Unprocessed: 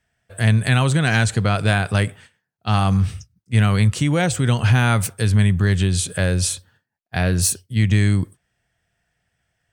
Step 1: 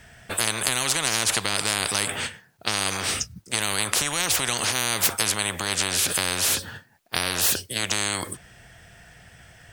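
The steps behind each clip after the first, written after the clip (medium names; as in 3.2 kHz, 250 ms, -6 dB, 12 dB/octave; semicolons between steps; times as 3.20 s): compression 2:1, threshold -22 dBFS, peak gain reduction 6.5 dB; spectrum-flattening compressor 10:1; trim +5 dB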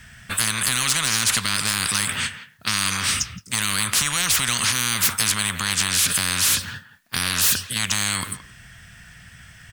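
high-order bell 510 Hz -12.5 dB; speakerphone echo 170 ms, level -14 dB; overload inside the chain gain 17.5 dB; trim +4.5 dB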